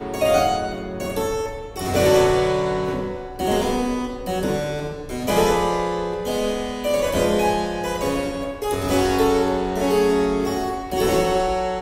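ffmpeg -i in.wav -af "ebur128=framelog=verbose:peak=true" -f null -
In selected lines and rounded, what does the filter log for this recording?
Integrated loudness:
  I:         -21.6 LUFS
  Threshold: -31.6 LUFS
Loudness range:
  LRA:         2.4 LU
  Threshold: -41.8 LUFS
  LRA low:   -23.0 LUFS
  LRA high:  -20.6 LUFS
True peak:
  Peak:       -5.5 dBFS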